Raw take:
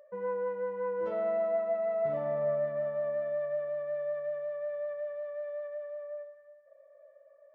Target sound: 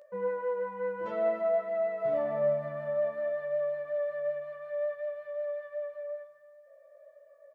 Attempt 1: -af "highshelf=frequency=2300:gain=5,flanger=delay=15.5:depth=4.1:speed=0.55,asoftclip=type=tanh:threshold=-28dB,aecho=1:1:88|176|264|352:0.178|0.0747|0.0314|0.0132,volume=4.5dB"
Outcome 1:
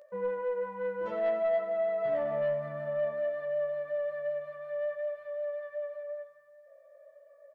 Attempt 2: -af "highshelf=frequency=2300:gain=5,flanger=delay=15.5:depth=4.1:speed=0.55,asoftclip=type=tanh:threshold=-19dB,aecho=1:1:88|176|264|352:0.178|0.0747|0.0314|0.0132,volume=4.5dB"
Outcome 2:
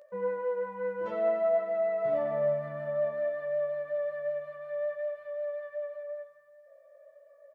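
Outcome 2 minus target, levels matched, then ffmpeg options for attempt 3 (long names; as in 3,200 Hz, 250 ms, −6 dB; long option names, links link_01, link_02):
echo 63 ms early
-af "highshelf=frequency=2300:gain=5,flanger=delay=15.5:depth=4.1:speed=0.55,asoftclip=type=tanh:threshold=-19dB,aecho=1:1:151|302|453|604:0.178|0.0747|0.0314|0.0132,volume=4.5dB"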